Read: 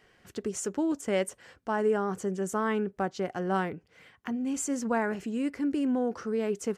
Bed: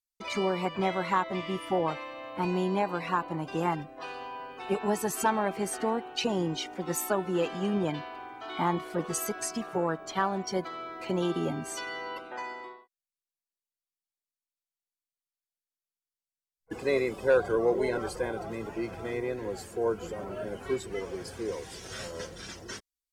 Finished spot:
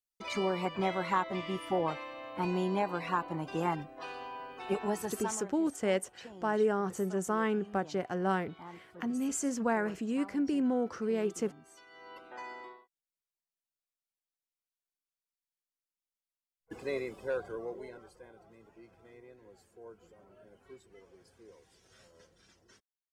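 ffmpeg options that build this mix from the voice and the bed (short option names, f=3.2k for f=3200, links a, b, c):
-filter_complex "[0:a]adelay=4750,volume=-2dB[a];[1:a]volume=13dB,afade=t=out:st=4.77:d=0.69:silence=0.133352,afade=t=in:st=11.89:d=0.69:silence=0.158489,afade=t=out:st=16.13:d=1.94:silence=0.133352[b];[a][b]amix=inputs=2:normalize=0"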